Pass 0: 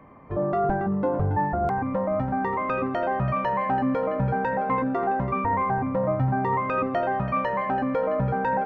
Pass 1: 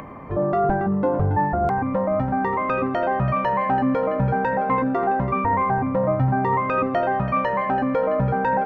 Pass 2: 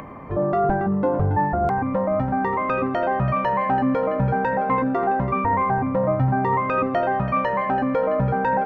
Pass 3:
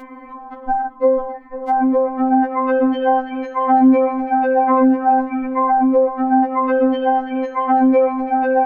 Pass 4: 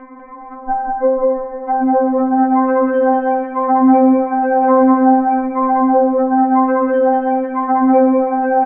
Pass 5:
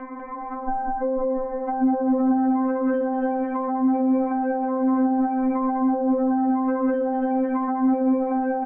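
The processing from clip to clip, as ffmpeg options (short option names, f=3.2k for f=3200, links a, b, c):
-af "acompressor=mode=upward:threshold=-33dB:ratio=2.5,volume=3.5dB"
-af anull
-af "afftfilt=real='re*3.46*eq(mod(b,12),0)':imag='im*3.46*eq(mod(b,12),0)':win_size=2048:overlap=0.75,volume=2.5dB"
-filter_complex "[0:a]lowpass=f=1.9k:w=0.5412,lowpass=f=1.9k:w=1.3066,asplit=2[a][b];[b]aecho=0:1:195.3|279.9:0.794|0.251[c];[a][c]amix=inputs=2:normalize=0"
-filter_complex "[0:a]alimiter=limit=-13dB:level=0:latency=1,acrossover=split=320[a][b];[b]acompressor=threshold=-30dB:ratio=3[c];[a][c]amix=inputs=2:normalize=0,volume=1.5dB"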